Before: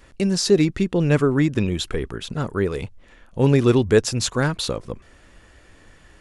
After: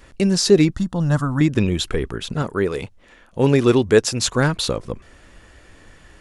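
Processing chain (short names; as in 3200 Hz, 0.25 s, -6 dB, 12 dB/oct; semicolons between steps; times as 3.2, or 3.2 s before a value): 0.74–1.41 fixed phaser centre 980 Hz, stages 4; 2.42–4.25 low shelf 130 Hz -9.5 dB; gain +3 dB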